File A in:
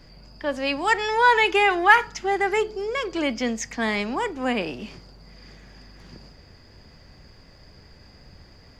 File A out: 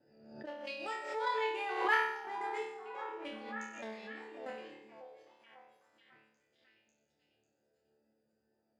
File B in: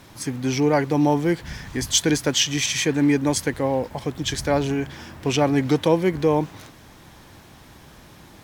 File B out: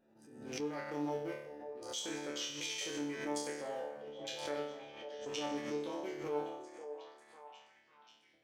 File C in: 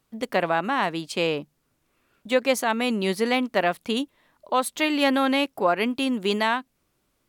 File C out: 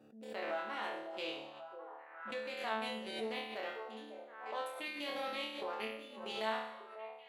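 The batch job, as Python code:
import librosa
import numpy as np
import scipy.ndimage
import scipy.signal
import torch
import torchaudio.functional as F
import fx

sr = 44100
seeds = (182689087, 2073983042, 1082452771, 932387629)

p1 = fx.wiener(x, sr, points=41)
p2 = scipy.signal.sosfilt(scipy.signal.butter(2, 370.0, 'highpass', fs=sr, output='sos'), p1)
p3 = fx.dynamic_eq(p2, sr, hz=4000.0, q=1.2, threshold_db=-39.0, ratio=4.0, max_db=3)
p4 = fx.level_steps(p3, sr, step_db=14)
p5 = fx.wow_flutter(p4, sr, seeds[0], rate_hz=2.1, depth_cents=23.0)
p6 = fx.resonator_bank(p5, sr, root=38, chord='fifth', decay_s=0.82)
p7 = p6 + fx.echo_stepped(p6, sr, ms=546, hz=550.0, octaves=0.7, feedback_pct=70, wet_db=-7, dry=0)
p8 = fx.pre_swell(p7, sr, db_per_s=64.0)
y = p8 * 10.0 ** (5.0 / 20.0)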